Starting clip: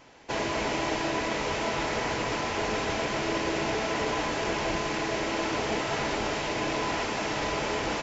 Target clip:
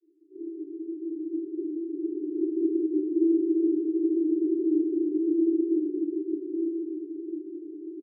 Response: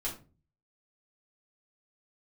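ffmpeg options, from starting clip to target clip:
-filter_complex "[0:a]alimiter=limit=-20.5dB:level=0:latency=1:release=149,dynaudnorm=framelen=230:gausssize=17:maxgain=12dB,aresample=16000,acrusher=samples=33:mix=1:aa=0.000001,aresample=44100,asuperpass=centerf=350:order=12:qfactor=3.4,aecho=1:1:222:0.237[link_01];[1:a]atrim=start_sample=2205,afade=type=out:start_time=0.14:duration=0.01,atrim=end_sample=6615[link_02];[link_01][link_02]afir=irnorm=-1:irlink=0"

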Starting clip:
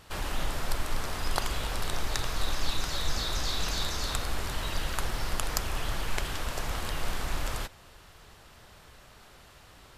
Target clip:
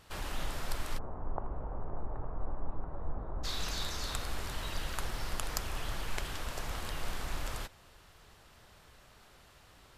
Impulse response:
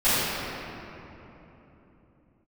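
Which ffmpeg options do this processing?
-filter_complex "[0:a]asplit=3[link_01][link_02][link_03];[link_01]afade=type=out:start_time=0.97:duration=0.02[link_04];[link_02]lowpass=frequency=1000:width=0.5412,lowpass=frequency=1000:width=1.3066,afade=type=in:start_time=0.97:duration=0.02,afade=type=out:start_time=3.43:duration=0.02[link_05];[link_03]afade=type=in:start_time=3.43:duration=0.02[link_06];[link_04][link_05][link_06]amix=inputs=3:normalize=0,volume=-5.5dB"

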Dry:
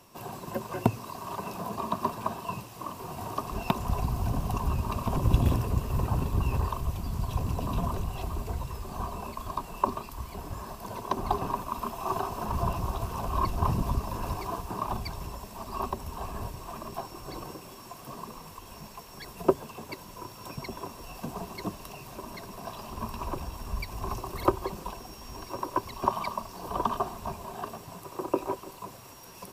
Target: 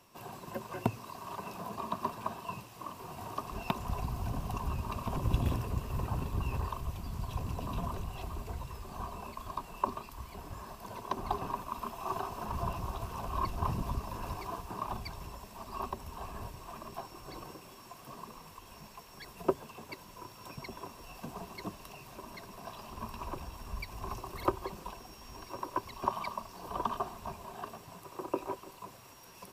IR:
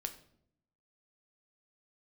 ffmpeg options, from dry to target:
-af "equalizer=frequency=2200:width=0.57:gain=3.5,volume=-7dB"

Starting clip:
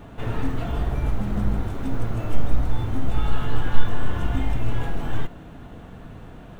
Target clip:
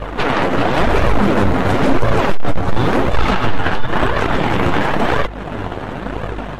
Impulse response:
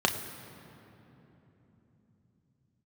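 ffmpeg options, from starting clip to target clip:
-filter_complex "[0:a]lowshelf=frequency=290:gain=-4.5,acompressor=threshold=-26dB:ratio=4,aeval=exprs='0.106*(cos(1*acos(clip(val(0)/0.106,-1,1)))-cos(1*PI/2))+0.0119*(cos(3*acos(clip(val(0)/0.106,-1,1)))-cos(3*PI/2))+0.00119*(cos(4*acos(clip(val(0)/0.106,-1,1)))-cos(4*PI/2))+0.0422*(cos(6*acos(clip(val(0)/0.106,-1,1)))-cos(6*PI/2))':channel_layout=same,lowshelf=frequency=140:gain=-10,aeval=exprs='val(0)+0.00282*(sin(2*PI*50*n/s)+sin(2*PI*2*50*n/s)/2+sin(2*PI*3*50*n/s)/3+sin(2*PI*4*50*n/s)/4+sin(2*PI*5*50*n/s)/5)':channel_layout=same,asplit=3[link_01][link_02][link_03];[link_01]afade=type=out:start_time=0.72:duration=0.02[link_04];[link_02]asoftclip=type=hard:threshold=-31.5dB,afade=type=in:start_time=0.72:duration=0.02,afade=type=out:start_time=3.44:duration=0.02[link_05];[link_03]afade=type=in:start_time=3.44:duration=0.02[link_06];[link_04][link_05][link_06]amix=inputs=3:normalize=0,lowpass=frequency=2500:poles=1,flanger=delay=1.7:depth=9.6:regen=31:speed=0.96:shape=sinusoidal,alimiter=level_in=30dB:limit=-1dB:release=50:level=0:latency=1,volume=-4dB" -ar 48000 -c:a libmp3lame -b:a 64k

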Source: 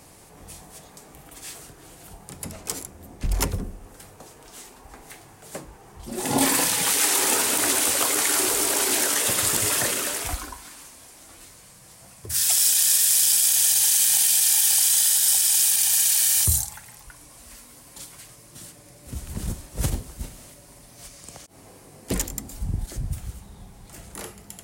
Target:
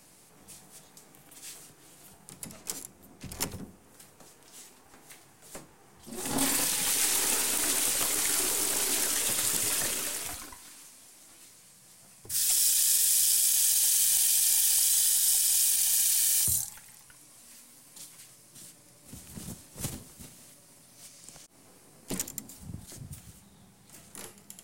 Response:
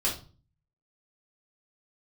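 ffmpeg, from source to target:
-filter_complex "[0:a]highpass=160,acrossover=split=260|2200[link_01][link_02][link_03];[link_02]aeval=exprs='max(val(0),0)':channel_layout=same[link_04];[link_01][link_04][link_03]amix=inputs=3:normalize=0,volume=-5.5dB"

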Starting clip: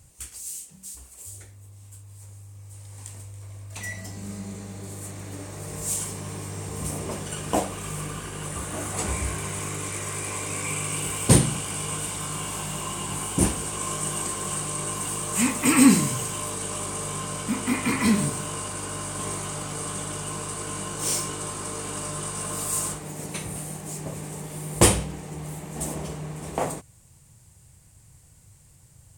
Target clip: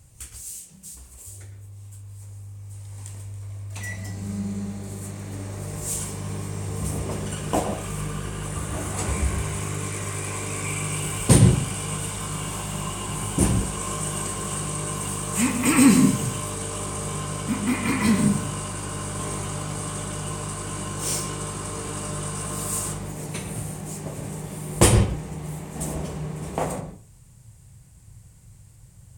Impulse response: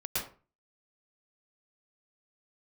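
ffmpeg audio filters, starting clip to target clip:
-filter_complex "[0:a]asplit=2[link_01][link_02];[1:a]atrim=start_sample=2205,lowpass=4600,lowshelf=frequency=270:gain=12[link_03];[link_02][link_03]afir=irnorm=-1:irlink=0,volume=-13dB[link_04];[link_01][link_04]amix=inputs=2:normalize=0,volume=-1dB"

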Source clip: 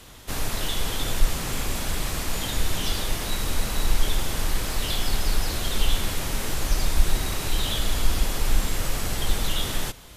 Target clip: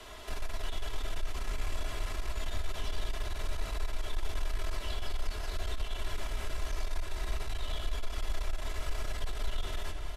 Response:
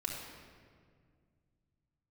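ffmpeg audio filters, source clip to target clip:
-filter_complex "[0:a]acompressor=threshold=-19dB:ratio=6,lowshelf=frequency=360:width_type=q:width=1.5:gain=-6.5,acrossover=split=170|1200[link_01][link_02][link_03];[link_01]acompressor=threshold=-35dB:ratio=4[link_04];[link_02]acompressor=threshold=-51dB:ratio=4[link_05];[link_03]acompressor=threshold=-43dB:ratio=4[link_06];[link_04][link_05][link_06]amix=inputs=3:normalize=0,lowpass=frequency=2800:poles=1,asplit=2[link_07][link_08];[link_08]adelay=186.6,volume=-11dB,highshelf=frequency=4000:gain=-4.2[link_09];[link_07][link_09]amix=inputs=2:normalize=0,asplit=2[link_10][link_11];[1:a]atrim=start_sample=2205,asetrate=25137,aresample=44100[link_12];[link_11][link_12]afir=irnorm=-1:irlink=0,volume=-5.5dB[link_13];[link_10][link_13]amix=inputs=2:normalize=0,aeval=exprs='(tanh(20*val(0)+0.3)-tanh(0.3))/20':channel_layout=same,aecho=1:1:3:0.63,volume=-2dB"

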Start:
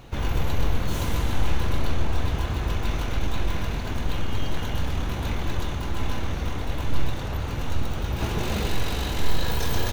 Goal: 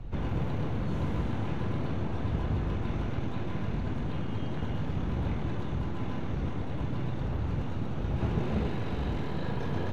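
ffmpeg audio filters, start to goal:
ffmpeg -i in.wav -filter_complex "[0:a]acrossover=split=3300[link_01][link_02];[link_02]acompressor=threshold=-42dB:ratio=4:attack=1:release=60[link_03];[link_01][link_03]amix=inputs=2:normalize=0,aemphasis=mode=reproduction:type=riaa,acrossover=split=120|1000|3400[link_04][link_05][link_06][link_07];[link_04]volume=26.5dB,asoftclip=hard,volume=-26.5dB[link_08];[link_08][link_05][link_06][link_07]amix=inputs=4:normalize=0,volume=-7dB" out.wav

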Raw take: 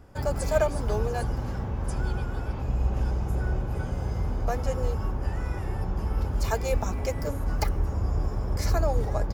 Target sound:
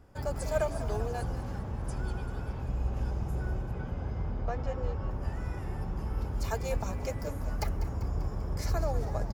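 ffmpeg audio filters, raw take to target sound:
ffmpeg -i in.wav -filter_complex "[0:a]asettb=1/sr,asplit=3[link_01][link_02][link_03];[link_01]atrim=end=3.714[link_04];[link_02]atrim=start=3.71:end=5.11,asetpts=PTS-STARTPTS,afade=type=in:duration=0.004:curve=qsin,afade=type=out:start_time=1.396:duration=0.004:curve=qsin,lowpass=3800[link_05];[link_03]atrim=start=5.106[link_06];[link_04][link_05]acrossfade=duration=0.004:curve1=hsin:curve2=qsin[link_07];[link_07][link_06]acrossfade=duration=0.004:curve1=qsin:curve2=hsin,asplit=2[link_08][link_09];[link_09]asplit=7[link_10][link_11][link_12][link_13][link_14][link_15][link_16];[link_10]adelay=196,afreqshift=41,volume=-13dB[link_17];[link_11]adelay=392,afreqshift=82,volume=-17.3dB[link_18];[link_12]adelay=588,afreqshift=123,volume=-21.6dB[link_19];[link_13]adelay=784,afreqshift=164,volume=-25.9dB[link_20];[link_14]adelay=980,afreqshift=205,volume=-30.2dB[link_21];[link_15]adelay=1176,afreqshift=246,volume=-34.5dB[link_22];[link_16]adelay=1372,afreqshift=287,volume=-38.8dB[link_23];[link_17][link_18][link_19][link_20][link_21][link_22][link_23]amix=inputs=7:normalize=0[link_24];[link_08][link_24]amix=inputs=2:normalize=0,volume=-6dB" out.wav

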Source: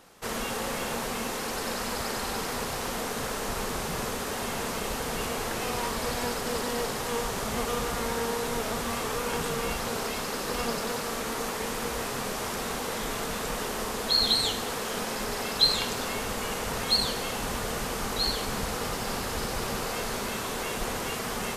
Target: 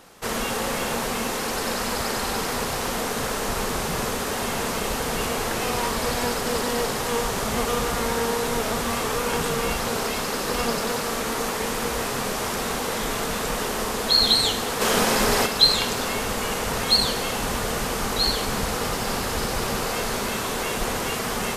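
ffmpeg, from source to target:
ffmpeg -i in.wav -filter_complex "[0:a]asplit=3[link_01][link_02][link_03];[link_01]afade=type=out:start_time=14.8:duration=0.02[link_04];[link_02]acontrast=56,afade=type=in:start_time=14.8:duration=0.02,afade=type=out:start_time=15.45:duration=0.02[link_05];[link_03]afade=type=in:start_time=15.45:duration=0.02[link_06];[link_04][link_05][link_06]amix=inputs=3:normalize=0,volume=5.5dB" out.wav

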